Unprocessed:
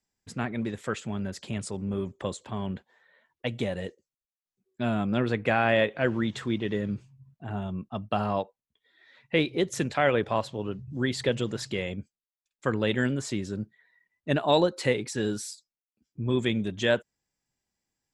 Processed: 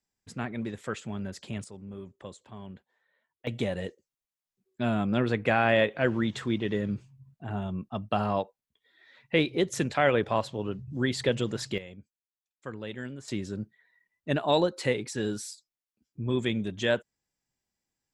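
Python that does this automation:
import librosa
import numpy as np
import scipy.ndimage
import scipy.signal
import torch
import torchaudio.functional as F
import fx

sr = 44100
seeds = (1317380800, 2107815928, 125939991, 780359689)

y = fx.gain(x, sr, db=fx.steps((0.0, -3.0), (1.64, -11.0), (3.47, 0.0), (11.78, -12.0), (13.28, -2.0)))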